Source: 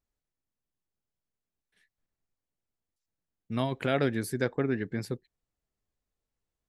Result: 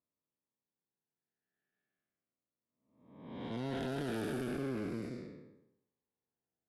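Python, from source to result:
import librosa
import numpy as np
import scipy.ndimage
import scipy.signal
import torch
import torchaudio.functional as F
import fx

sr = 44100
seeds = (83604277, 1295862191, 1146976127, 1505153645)

y = fx.spec_blur(x, sr, span_ms=569.0)
y = scipy.signal.sosfilt(scipy.signal.butter(2, 180.0, 'highpass', fs=sr, output='sos'), y)
y = fx.env_lowpass(y, sr, base_hz=1400.0, full_db=-35.0)
y = fx.tube_stage(y, sr, drive_db=36.0, bias=0.45)
y = fx.notch_cascade(y, sr, direction='falling', hz=0.38)
y = y * 10.0 ** (4.0 / 20.0)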